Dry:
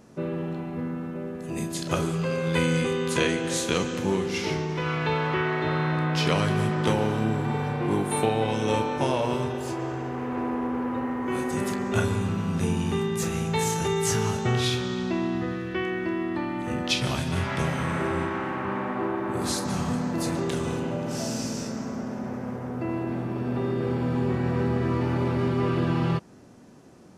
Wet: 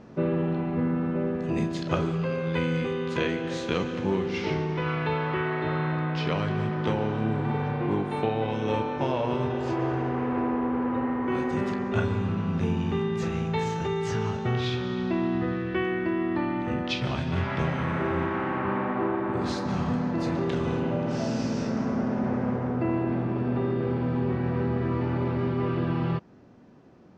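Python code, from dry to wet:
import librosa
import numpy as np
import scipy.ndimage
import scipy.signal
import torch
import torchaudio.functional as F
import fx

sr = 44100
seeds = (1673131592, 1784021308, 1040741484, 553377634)

y = fx.rider(x, sr, range_db=10, speed_s=0.5)
y = fx.air_absorb(y, sr, metres=200.0)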